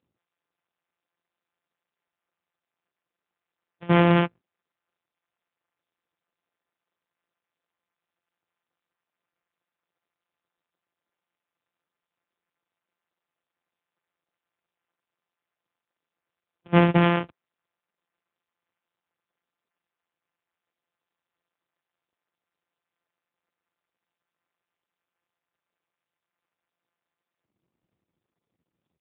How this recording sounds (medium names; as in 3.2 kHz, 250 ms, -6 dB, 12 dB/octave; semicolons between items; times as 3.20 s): a buzz of ramps at a fixed pitch in blocks of 256 samples; AMR-NB